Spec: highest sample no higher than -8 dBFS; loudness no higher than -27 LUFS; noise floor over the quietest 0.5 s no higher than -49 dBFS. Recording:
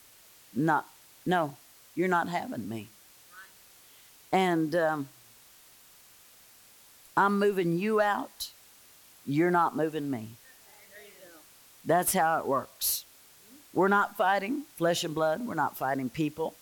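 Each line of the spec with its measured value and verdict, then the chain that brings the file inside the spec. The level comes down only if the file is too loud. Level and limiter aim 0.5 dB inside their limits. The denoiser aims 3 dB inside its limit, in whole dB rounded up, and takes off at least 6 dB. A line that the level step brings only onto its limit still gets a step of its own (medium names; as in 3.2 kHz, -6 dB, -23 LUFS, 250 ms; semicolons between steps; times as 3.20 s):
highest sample -11.5 dBFS: pass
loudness -28.5 LUFS: pass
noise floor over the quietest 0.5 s -56 dBFS: pass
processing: none needed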